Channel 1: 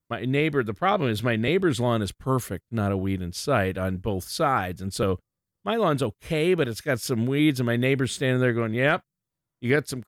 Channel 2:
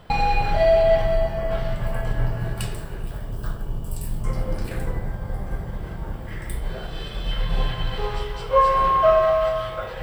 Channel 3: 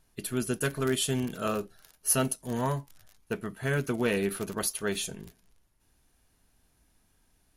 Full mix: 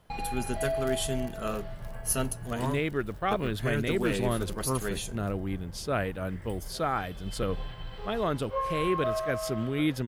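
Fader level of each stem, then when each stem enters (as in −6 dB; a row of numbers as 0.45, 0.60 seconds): −6.5, −14.5, −3.5 decibels; 2.40, 0.00, 0.00 seconds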